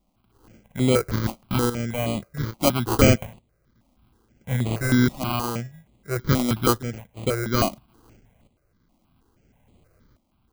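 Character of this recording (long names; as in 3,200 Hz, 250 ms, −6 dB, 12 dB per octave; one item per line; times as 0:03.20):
a buzz of ramps at a fixed pitch in blocks of 8 samples
tremolo saw up 0.59 Hz, depth 70%
aliases and images of a low sample rate 1,800 Hz, jitter 0%
notches that jump at a steady rate 6.3 Hz 430–5,500 Hz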